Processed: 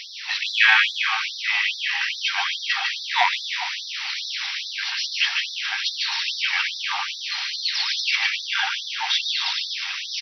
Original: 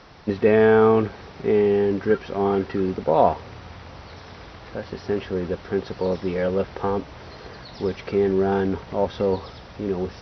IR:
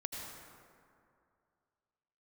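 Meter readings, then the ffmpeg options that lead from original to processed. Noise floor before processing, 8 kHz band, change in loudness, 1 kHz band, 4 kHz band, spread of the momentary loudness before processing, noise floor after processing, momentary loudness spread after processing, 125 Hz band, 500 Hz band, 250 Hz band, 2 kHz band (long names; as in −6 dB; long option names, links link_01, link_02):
−43 dBFS, can't be measured, +0.5 dB, −1.5 dB, +22.0 dB, 22 LU, −34 dBFS, 6 LU, below −40 dB, −29.5 dB, below −40 dB, +13.5 dB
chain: -filter_complex "[0:a]acontrast=66,highshelf=frequency=1700:width_type=q:width=1.5:gain=12,asplit=2[link_01][link_02];[link_02]aecho=0:1:150|262.5|346.9|410.2|457.6:0.631|0.398|0.251|0.158|0.1[link_03];[link_01][link_03]amix=inputs=2:normalize=0,afftfilt=real='re*gte(b*sr/1024,720*pow(3500/720,0.5+0.5*sin(2*PI*2.4*pts/sr)))':imag='im*gte(b*sr/1024,720*pow(3500/720,0.5+0.5*sin(2*PI*2.4*pts/sr)))':win_size=1024:overlap=0.75"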